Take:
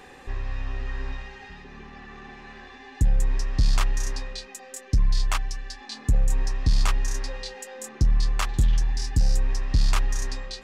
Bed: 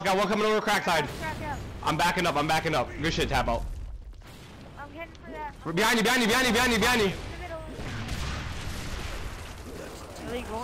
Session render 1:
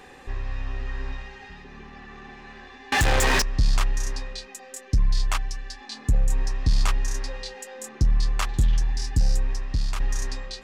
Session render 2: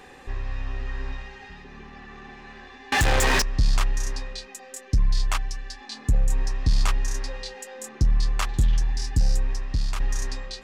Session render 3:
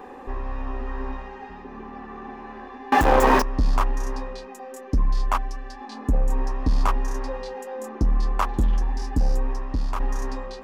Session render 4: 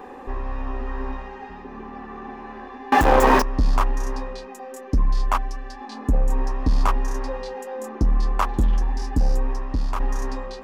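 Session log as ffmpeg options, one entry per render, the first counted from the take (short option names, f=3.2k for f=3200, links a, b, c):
-filter_complex "[0:a]asettb=1/sr,asplit=3[a][b][c];[a]atrim=end=2.924[d];[b]atrim=start=2.92:end=3.42,asetpts=PTS-STARTPTS,afade=t=in:d=0.004:c=qsin,afade=t=out:st=0.496:d=0.004:c=qsin,asplit=2[e][f];[f]highpass=f=720:p=1,volume=42dB,asoftclip=type=tanh:threshold=-13dB[g];[e][g]amix=inputs=2:normalize=0,lowpass=f=7k:p=1,volume=-6dB[h];[c]atrim=start=3.416[i];[d][h]acrossfade=d=0.004:c1=hsin:c2=qsin[j];[j][i]acrossfade=d=0.004:c1=qsin:c2=hsin,asplit=2[k][l];[k]atrim=end=10,asetpts=PTS-STARTPTS,afade=t=out:st=9.3:d=0.7:silence=0.421697[m];[l]atrim=start=10,asetpts=PTS-STARTPTS,afade=t=in:d=0.004:c=hsin:silence=0.421697[n];[m][n]concat=n=2:v=0:a=1"
-af anull
-af "equalizer=f=125:t=o:w=1:g=-9,equalizer=f=250:t=o:w=1:g=10,equalizer=f=500:t=o:w=1:g=5,equalizer=f=1k:t=o:w=1:g=10,equalizer=f=2k:t=o:w=1:g=-4,equalizer=f=4k:t=o:w=1:g=-7,equalizer=f=8k:t=o:w=1:g=-9"
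-af "volume=1.5dB"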